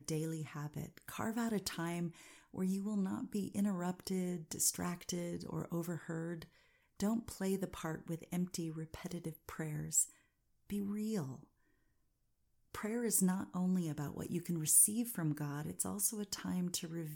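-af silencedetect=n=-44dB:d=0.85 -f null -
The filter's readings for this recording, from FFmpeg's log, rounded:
silence_start: 11.36
silence_end: 12.75 | silence_duration: 1.39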